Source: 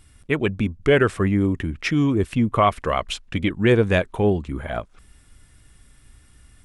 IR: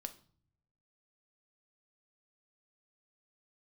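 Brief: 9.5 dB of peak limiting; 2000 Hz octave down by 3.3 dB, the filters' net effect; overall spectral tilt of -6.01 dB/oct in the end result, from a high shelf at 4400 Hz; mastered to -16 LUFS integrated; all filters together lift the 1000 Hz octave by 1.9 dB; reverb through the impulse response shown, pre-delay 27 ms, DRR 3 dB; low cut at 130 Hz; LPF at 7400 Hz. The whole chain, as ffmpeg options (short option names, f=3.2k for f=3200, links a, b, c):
-filter_complex "[0:a]highpass=130,lowpass=7.4k,equalizer=f=1k:t=o:g=4,equalizer=f=2k:t=o:g=-4.5,highshelf=f=4.4k:g=-5,alimiter=limit=-13dB:level=0:latency=1,asplit=2[a][b];[1:a]atrim=start_sample=2205,adelay=27[c];[b][c]afir=irnorm=-1:irlink=0,volume=0.5dB[d];[a][d]amix=inputs=2:normalize=0,volume=7.5dB"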